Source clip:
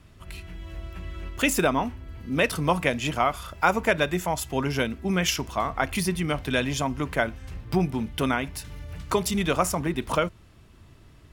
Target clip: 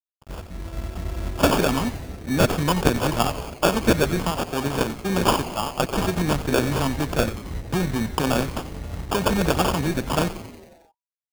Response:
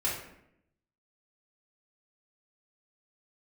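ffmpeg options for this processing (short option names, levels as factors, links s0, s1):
-filter_complex "[0:a]agate=range=0.0224:threshold=0.0141:ratio=3:detection=peak,asettb=1/sr,asplit=3[s0][s1][s2];[s0]atrim=end=4.304[s3];[s1]atrim=start=4.3:end=6.16,asetpts=PTS-STARTPTS,afade=t=in:d=0.004:c=qsin,afade=t=out:st=1.856:d=0.004:c=qsin,lowshelf=f=230:g=-10.5[s4];[s2]atrim=start=6.156[s5];[s3][s4]acrossfade=d=0.004:c1=hsin:c2=qsin[s6];[s6][s5]acrossfade=d=0.004:c1=qsin:c2=hsin,acrossover=split=380|1400[s7][s8][s9];[s7]alimiter=level_in=1.26:limit=0.0631:level=0:latency=1,volume=0.794[s10];[s8]acompressor=threshold=0.0126:ratio=6[s11];[s10][s11][s9]amix=inputs=3:normalize=0,acrusher=samples=22:mix=1:aa=0.000001,aeval=exprs='sgn(val(0))*max(abs(val(0))-0.00501,0)':c=same,asplit=2[s12][s13];[s13]asplit=7[s14][s15][s16][s17][s18][s19][s20];[s14]adelay=90,afreqshift=-140,volume=0.224[s21];[s15]adelay=180,afreqshift=-280,volume=0.143[s22];[s16]adelay=270,afreqshift=-420,volume=0.0912[s23];[s17]adelay=360,afreqshift=-560,volume=0.0589[s24];[s18]adelay=450,afreqshift=-700,volume=0.0376[s25];[s19]adelay=540,afreqshift=-840,volume=0.024[s26];[s20]adelay=630,afreqshift=-980,volume=0.0153[s27];[s21][s22][s23][s24][s25][s26][s27]amix=inputs=7:normalize=0[s28];[s12][s28]amix=inputs=2:normalize=0,volume=2.66"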